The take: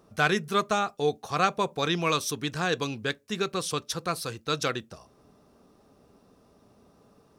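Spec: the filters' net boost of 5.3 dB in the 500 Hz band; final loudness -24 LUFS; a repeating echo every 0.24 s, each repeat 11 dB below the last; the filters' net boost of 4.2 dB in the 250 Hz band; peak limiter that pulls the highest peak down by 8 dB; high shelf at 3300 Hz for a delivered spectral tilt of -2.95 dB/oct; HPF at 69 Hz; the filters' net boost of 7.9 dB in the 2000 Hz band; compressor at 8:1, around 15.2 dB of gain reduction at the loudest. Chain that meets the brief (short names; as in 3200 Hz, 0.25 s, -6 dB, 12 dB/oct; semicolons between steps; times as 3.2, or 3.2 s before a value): HPF 69 Hz; bell 250 Hz +4.5 dB; bell 500 Hz +4.5 dB; bell 2000 Hz +8 dB; high shelf 3300 Hz +8.5 dB; compressor 8:1, threshold -30 dBFS; limiter -23 dBFS; feedback echo 0.24 s, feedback 28%, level -11 dB; gain +12 dB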